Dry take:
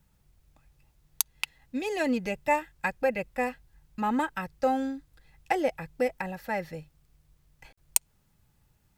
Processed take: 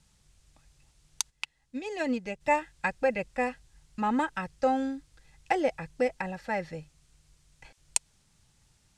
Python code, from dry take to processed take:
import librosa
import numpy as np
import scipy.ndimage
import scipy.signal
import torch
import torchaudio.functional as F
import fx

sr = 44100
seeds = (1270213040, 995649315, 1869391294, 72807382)

y = fx.dmg_noise_colour(x, sr, seeds[0], colour='blue', level_db=-63.0)
y = scipy.signal.sosfilt(scipy.signal.butter(4, 8600.0, 'lowpass', fs=sr, output='sos'), y)
y = fx.upward_expand(y, sr, threshold_db=-43.0, expansion=1.5, at=(1.29, 2.4), fade=0.02)